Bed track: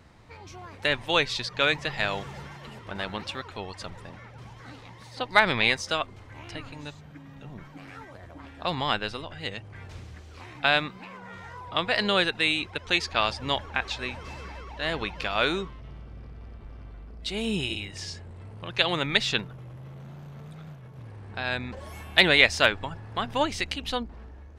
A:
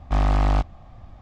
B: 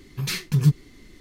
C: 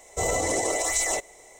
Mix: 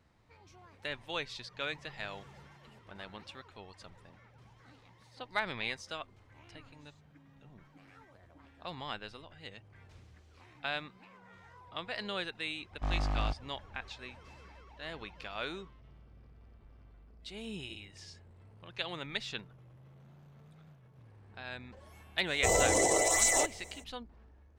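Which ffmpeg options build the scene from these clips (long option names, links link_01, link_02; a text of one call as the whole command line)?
ffmpeg -i bed.wav -i cue0.wav -i cue1.wav -i cue2.wav -filter_complex "[0:a]volume=-14dB[link_01];[1:a]atrim=end=1.21,asetpts=PTS-STARTPTS,volume=-13dB,afade=type=in:duration=0.004:curve=hsin,afade=type=out:start_time=1.206:duration=0.004:curve=hsin,adelay=12710[link_02];[3:a]atrim=end=1.59,asetpts=PTS-STARTPTS,volume=-1.5dB,afade=type=in:duration=0.05,afade=type=out:start_time=1.54:duration=0.05,adelay=22260[link_03];[link_01][link_02][link_03]amix=inputs=3:normalize=0" out.wav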